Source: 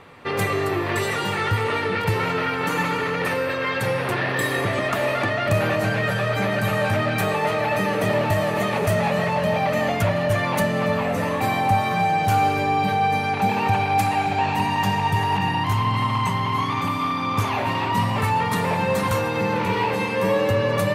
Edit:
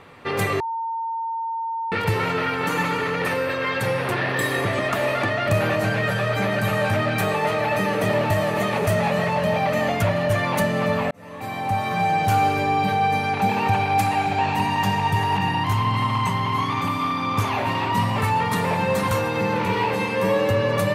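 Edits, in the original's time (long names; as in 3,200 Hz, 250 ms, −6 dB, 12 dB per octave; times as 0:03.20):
0:00.60–0:01.92: beep over 910 Hz −24 dBFS
0:11.11–0:12.11: fade in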